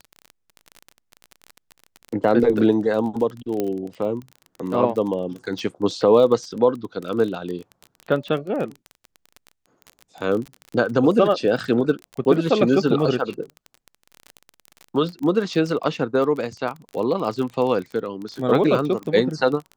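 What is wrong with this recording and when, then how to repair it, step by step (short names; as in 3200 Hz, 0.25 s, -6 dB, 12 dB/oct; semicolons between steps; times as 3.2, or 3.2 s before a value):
crackle 28/s -28 dBFS
3.6 pop -11 dBFS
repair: de-click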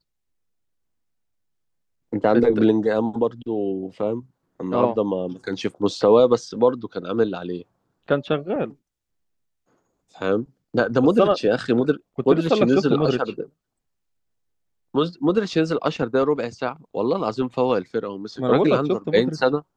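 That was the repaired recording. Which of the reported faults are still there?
none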